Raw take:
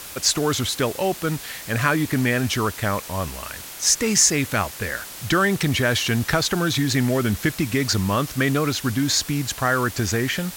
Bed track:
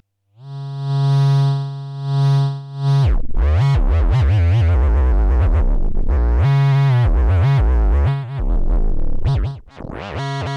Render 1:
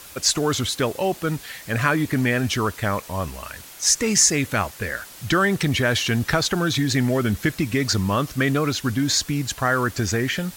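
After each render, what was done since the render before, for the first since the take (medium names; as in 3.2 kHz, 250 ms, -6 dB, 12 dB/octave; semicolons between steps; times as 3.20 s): noise reduction 6 dB, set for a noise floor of -37 dBFS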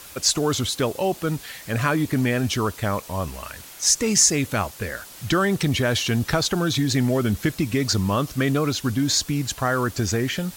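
dynamic bell 1.8 kHz, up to -5 dB, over -38 dBFS, Q 1.5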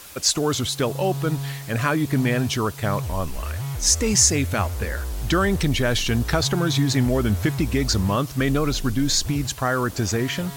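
add bed track -14.5 dB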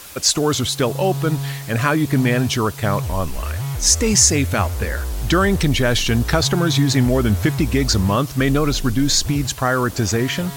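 trim +4 dB; peak limiter -2 dBFS, peak gain reduction 1.5 dB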